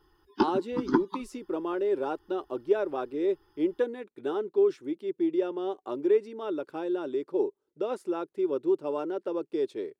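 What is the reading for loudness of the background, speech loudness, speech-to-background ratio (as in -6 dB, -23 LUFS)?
-31.0 LUFS, -30.5 LUFS, 0.5 dB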